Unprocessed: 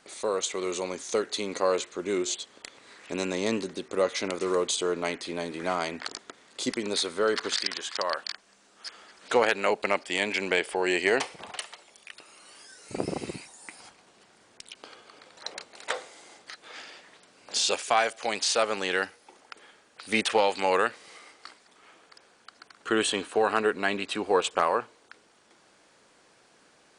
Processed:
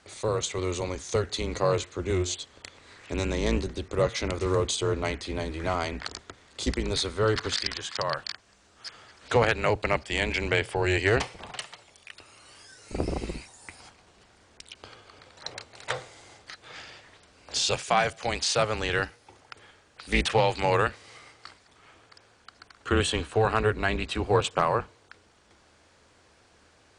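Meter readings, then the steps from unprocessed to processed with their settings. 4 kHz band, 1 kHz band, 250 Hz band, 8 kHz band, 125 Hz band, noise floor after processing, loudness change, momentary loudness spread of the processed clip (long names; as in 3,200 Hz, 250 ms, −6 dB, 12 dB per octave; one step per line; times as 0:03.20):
−0.5 dB, 0.0 dB, +0.5 dB, −1.5 dB, +15.0 dB, −61 dBFS, +0.5 dB, 19 LU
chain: sub-octave generator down 2 octaves, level +3 dB
low-pass filter 8,900 Hz 12 dB per octave
highs frequency-modulated by the lows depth 0.12 ms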